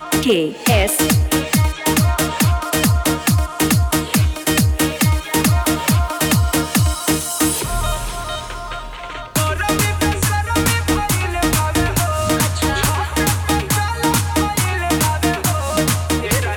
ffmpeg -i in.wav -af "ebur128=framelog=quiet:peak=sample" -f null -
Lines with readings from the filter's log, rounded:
Integrated loudness:
  I:         -17.0 LUFS
  Threshold: -27.2 LUFS
Loudness range:
  LRA:         3.4 LU
  Threshold: -37.3 LUFS
  LRA low:   -19.6 LUFS
  LRA high:  -16.2 LUFS
Sample peak:
  Peak:       -7.7 dBFS